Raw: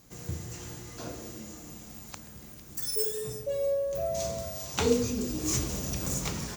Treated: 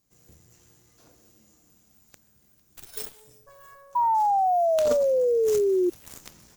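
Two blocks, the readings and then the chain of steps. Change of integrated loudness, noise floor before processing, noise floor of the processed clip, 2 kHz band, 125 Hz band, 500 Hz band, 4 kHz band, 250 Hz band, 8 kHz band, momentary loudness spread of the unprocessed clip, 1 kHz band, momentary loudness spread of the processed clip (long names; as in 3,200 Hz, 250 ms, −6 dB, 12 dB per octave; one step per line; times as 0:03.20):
+8.0 dB, −48 dBFS, −63 dBFS, can't be measured, below −15 dB, +7.5 dB, −9.0 dB, −0.5 dB, −9.5 dB, 16 LU, +18.0 dB, 14 LU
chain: high-shelf EQ 5,400 Hz +6.5 dB
harmonic generator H 3 −10 dB, 5 −29 dB, 6 −27 dB, 7 −25 dB, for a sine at −11.5 dBFS
sound drawn into the spectrogram fall, 0:03.95–0:05.90, 350–980 Hz −19 dBFS
level −2.5 dB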